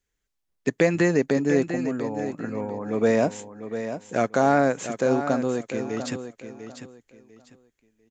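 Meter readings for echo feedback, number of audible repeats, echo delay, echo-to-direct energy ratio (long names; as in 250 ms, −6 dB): 25%, 3, 697 ms, −9.5 dB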